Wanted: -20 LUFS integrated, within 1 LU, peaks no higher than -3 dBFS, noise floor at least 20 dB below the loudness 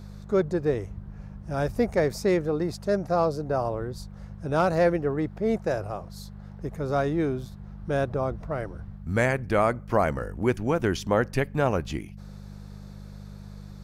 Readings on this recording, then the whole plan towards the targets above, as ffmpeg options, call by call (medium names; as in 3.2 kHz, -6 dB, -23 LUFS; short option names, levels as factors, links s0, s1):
hum 50 Hz; highest harmonic 200 Hz; hum level -39 dBFS; loudness -27.0 LUFS; peak level -9.0 dBFS; loudness target -20.0 LUFS
-> -af "bandreject=f=50:t=h:w=4,bandreject=f=100:t=h:w=4,bandreject=f=150:t=h:w=4,bandreject=f=200:t=h:w=4"
-af "volume=2.24,alimiter=limit=0.708:level=0:latency=1"